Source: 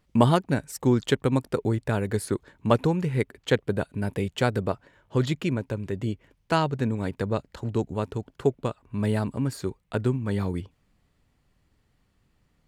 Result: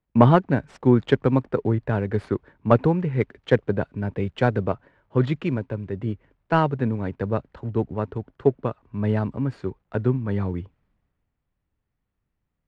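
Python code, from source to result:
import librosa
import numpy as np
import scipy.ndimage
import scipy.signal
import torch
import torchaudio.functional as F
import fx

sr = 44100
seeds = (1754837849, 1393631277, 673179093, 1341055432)

y = fx.cvsd(x, sr, bps=64000)
y = scipy.signal.sosfilt(scipy.signal.butter(2, 2100.0, 'lowpass', fs=sr, output='sos'), y)
y = fx.band_widen(y, sr, depth_pct=40)
y = F.gain(torch.from_numpy(y), 3.0).numpy()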